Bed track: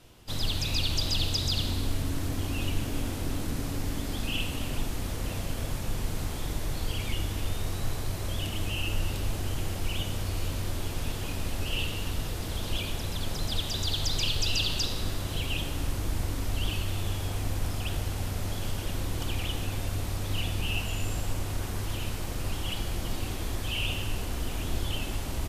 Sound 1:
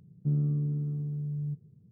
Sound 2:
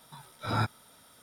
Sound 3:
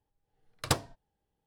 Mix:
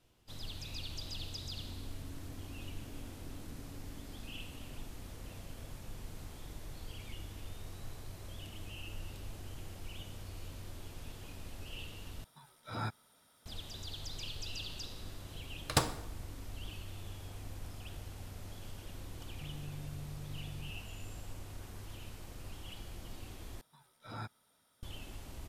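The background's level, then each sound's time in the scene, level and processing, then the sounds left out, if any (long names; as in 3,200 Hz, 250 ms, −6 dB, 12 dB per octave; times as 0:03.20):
bed track −15 dB
0:12.24: overwrite with 2 −9.5 dB
0:15.06: mix in 3 −1.5 dB + dense smooth reverb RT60 0.78 s, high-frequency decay 0.75×, DRR 7.5 dB
0:19.16: mix in 1 −15 dB + downward compressor, threshold −28 dBFS
0:23.61: overwrite with 2 −15 dB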